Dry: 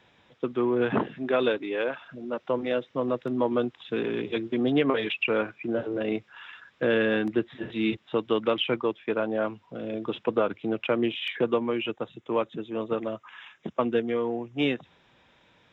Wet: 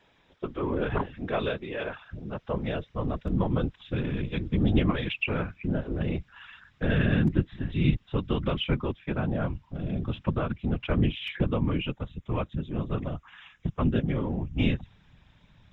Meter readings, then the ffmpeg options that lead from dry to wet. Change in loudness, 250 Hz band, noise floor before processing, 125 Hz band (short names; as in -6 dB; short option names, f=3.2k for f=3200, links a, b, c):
-1.5 dB, -0.5 dB, -63 dBFS, +13.0 dB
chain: -af "afftfilt=real='hypot(re,im)*cos(2*PI*random(0))':imag='hypot(re,im)*sin(2*PI*random(1))':win_size=512:overlap=0.75,asubboost=boost=10.5:cutoff=130,volume=3dB"